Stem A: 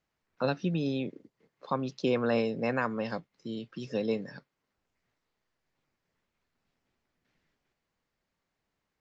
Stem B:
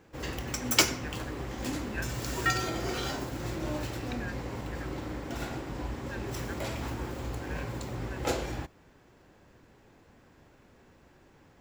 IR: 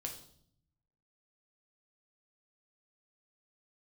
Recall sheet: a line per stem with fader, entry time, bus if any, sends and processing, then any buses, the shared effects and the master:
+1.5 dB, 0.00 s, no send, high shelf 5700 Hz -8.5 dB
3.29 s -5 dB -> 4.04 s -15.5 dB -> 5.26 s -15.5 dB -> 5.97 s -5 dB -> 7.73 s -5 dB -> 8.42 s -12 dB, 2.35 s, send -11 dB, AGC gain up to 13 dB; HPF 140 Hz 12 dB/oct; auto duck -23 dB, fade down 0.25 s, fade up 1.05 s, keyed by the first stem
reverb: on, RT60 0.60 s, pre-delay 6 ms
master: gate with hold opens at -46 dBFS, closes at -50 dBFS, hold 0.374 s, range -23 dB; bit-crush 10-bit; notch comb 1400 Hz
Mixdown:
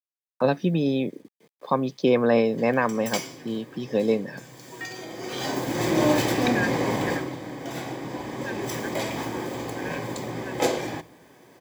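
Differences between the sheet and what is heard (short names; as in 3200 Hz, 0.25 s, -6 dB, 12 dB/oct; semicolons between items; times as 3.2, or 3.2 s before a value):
stem A +1.5 dB -> +8.5 dB; stem B -5.0 dB -> +1.0 dB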